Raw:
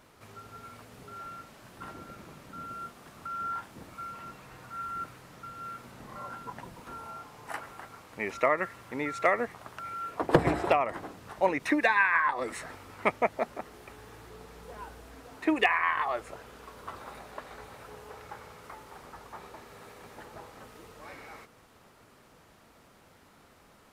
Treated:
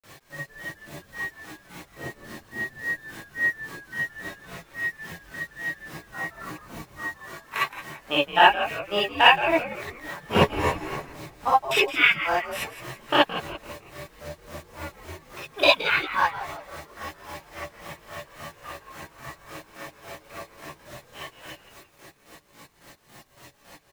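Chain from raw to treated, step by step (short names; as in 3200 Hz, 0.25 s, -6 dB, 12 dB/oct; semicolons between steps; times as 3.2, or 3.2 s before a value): pitch shift +5.5 st; grains 0.14 s, grains 3.6/s, pitch spread up and down by 0 st; bit-crush 10-bit; on a send: frequency-shifting echo 0.169 s, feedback 47%, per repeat -120 Hz, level -12 dB; on the sum: non-linear reverb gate 80 ms rising, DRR -7.5 dB; gain +5.5 dB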